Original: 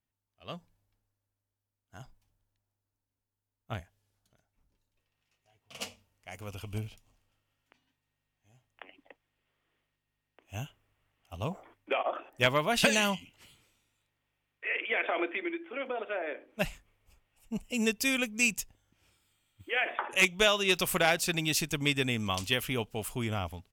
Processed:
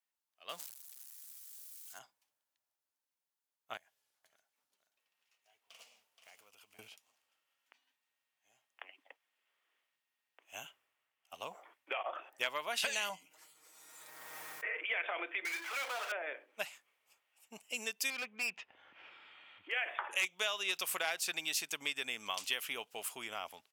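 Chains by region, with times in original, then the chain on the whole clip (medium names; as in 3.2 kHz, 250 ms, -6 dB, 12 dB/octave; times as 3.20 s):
0.49–1.99 s: zero-crossing glitches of -44 dBFS + peaking EQ 7.7 kHz +3 dB 1.5 oct + decay stretcher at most 72 dB/s
3.77–6.79 s: block-companded coder 5-bit + compression 12:1, threshold -53 dBFS + delay 475 ms -8 dB
10.64–11.34 s: block-companded coder 7-bit + bass shelf 150 Hz +6.5 dB + three bands expanded up and down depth 40%
13.09–14.84 s: peaking EQ 2.9 kHz -14.5 dB 1.1 oct + comb 6.4 ms, depth 74% + swell ahead of each attack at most 24 dB/s
15.45–16.12 s: high-pass 1 kHz + treble shelf 3.1 kHz -10.5 dB + power-law waveshaper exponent 0.35
18.10–19.72 s: low-pass 2.8 kHz 24 dB/octave + upward compressor, threshold -35 dBFS + hard clipper -30.5 dBFS
whole clip: compression 3:1, threshold -32 dBFS; Bessel high-pass 860 Hz, order 2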